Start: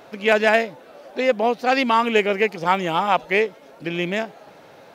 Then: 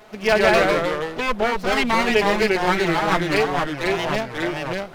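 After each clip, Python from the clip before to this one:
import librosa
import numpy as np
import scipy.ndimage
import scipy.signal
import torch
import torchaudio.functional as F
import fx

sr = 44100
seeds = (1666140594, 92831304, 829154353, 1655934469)

y = fx.lower_of_two(x, sr, delay_ms=4.7)
y = fx.echo_pitch(y, sr, ms=84, semitones=-2, count=3, db_per_echo=-3.0)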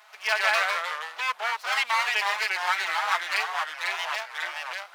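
y = scipy.signal.sosfilt(scipy.signal.butter(4, 900.0, 'highpass', fs=sr, output='sos'), x)
y = y * 10.0 ** (-2.5 / 20.0)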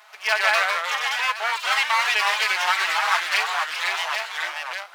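y = fx.echo_pitch(x, sr, ms=686, semitones=4, count=3, db_per_echo=-6.0)
y = y * 10.0 ** (3.5 / 20.0)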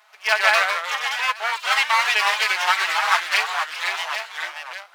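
y = fx.upward_expand(x, sr, threshold_db=-35.0, expansion=1.5)
y = y * 10.0 ** (3.5 / 20.0)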